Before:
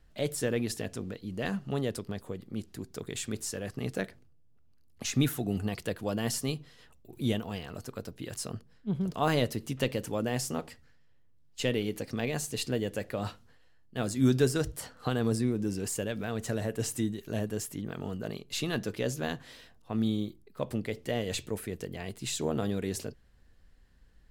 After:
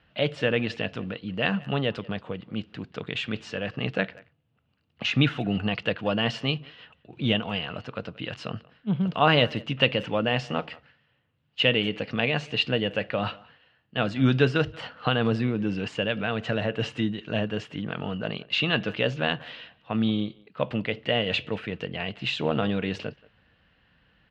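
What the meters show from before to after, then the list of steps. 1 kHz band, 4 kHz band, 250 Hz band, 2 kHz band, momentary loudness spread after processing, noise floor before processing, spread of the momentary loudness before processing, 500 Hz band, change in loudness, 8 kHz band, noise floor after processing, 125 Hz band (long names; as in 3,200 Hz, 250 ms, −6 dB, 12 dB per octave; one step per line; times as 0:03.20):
+8.5 dB, +11.0 dB, +4.0 dB, +11.5 dB, 12 LU, −59 dBFS, 11 LU, +5.0 dB, +6.0 dB, below −15 dB, −69 dBFS, +4.5 dB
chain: loudspeaker in its box 130–3,600 Hz, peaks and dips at 250 Hz −5 dB, 380 Hz −9 dB, 1,400 Hz +3 dB, 2,800 Hz +9 dB
far-end echo of a speakerphone 180 ms, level −22 dB
level +8 dB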